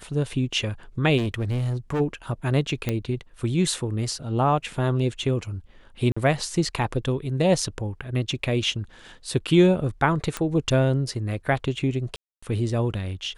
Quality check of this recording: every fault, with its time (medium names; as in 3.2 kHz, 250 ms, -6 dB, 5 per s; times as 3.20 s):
1.17–2.01 s: clipped -21.5 dBFS
2.89 s: pop -11 dBFS
6.12–6.17 s: dropout 45 ms
10.37 s: pop -12 dBFS
12.16–12.43 s: dropout 265 ms